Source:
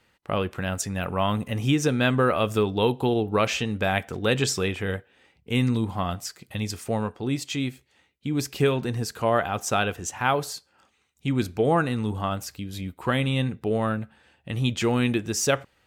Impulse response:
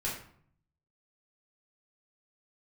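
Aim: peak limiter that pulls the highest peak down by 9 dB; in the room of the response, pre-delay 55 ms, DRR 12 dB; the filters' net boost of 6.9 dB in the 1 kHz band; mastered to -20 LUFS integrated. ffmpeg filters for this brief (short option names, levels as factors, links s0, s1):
-filter_complex "[0:a]equalizer=f=1000:t=o:g=9,alimiter=limit=0.237:level=0:latency=1,asplit=2[s0][s1];[1:a]atrim=start_sample=2205,adelay=55[s2];[s1][s2]afir=irnorm=-1:irlink=0,volume=0.15[s3];[s0][s3]amix=inputs=2:normalize=0,volume=1.88"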